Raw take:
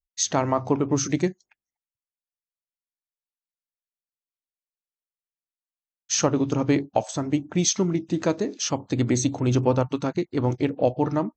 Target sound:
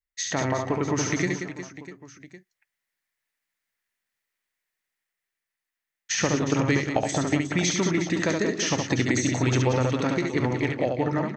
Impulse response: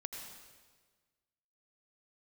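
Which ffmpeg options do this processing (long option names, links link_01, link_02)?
-filter_complex "[0:a]dynaudnorm=framelen=140:gausssize=17:maxgain=11dB,equalizer=frequency=1900:width=2.1:gain=14.5,acrossover=split=640|3700[link_01][link_02][link_03];[link_01]acompressor=threshold=-21dB:ratio=4[link_04];[link_02]acompressor=threshold=-28dB:ratio=4[link_05];[link_03]acompressor=threshold=-28dB:ratio=4[link_06];[link_04][link_05][link_06]amix=inputs=3:normalize=0,asplit=2[link_07][link_08];[link_08]aecho=0:1:70|182|361.2|647.9|1107:0.631|0.398|0.251|0.158|0.1[link_09];[link_07][link_09]amix=inputs=2:normalize=0,volume=-3dB"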